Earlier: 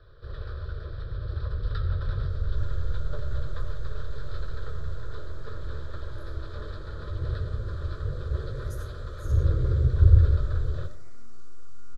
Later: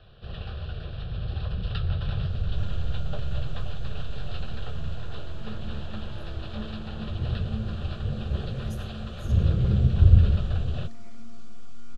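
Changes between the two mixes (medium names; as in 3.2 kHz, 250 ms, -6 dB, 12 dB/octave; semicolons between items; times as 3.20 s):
speech: send -6.5 dB; first sound: send off; master: remove static phaser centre 750 Hz, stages 6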